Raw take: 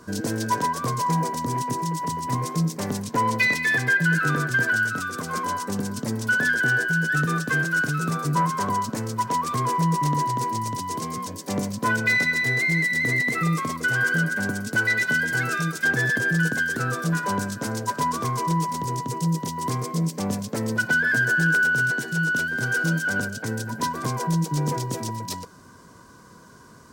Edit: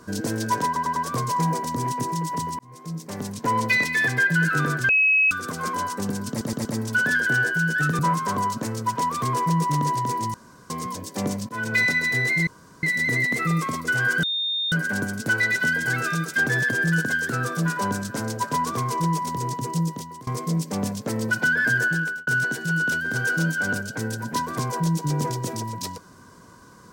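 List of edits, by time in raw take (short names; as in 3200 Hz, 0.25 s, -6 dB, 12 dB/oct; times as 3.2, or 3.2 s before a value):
0.66 stutter 0.10 s, 4 plays
2.29–3.27 fade in
4.59–5.01 bleep 2560 Hz -15 dBFS
5.99 stutter 0.12 s, 4 plays
7.33–8.31 cut
10.66–11.02 room tone
11.81–12.07 fade in, from -19.5 dB
12.79 insert room tone 0.36 s
14.19 add tone 3650 Hz -22.5 dBFS 0.49 s
19.24–19.74 fade out, to -23.5 dB
21.28–21.74 fade out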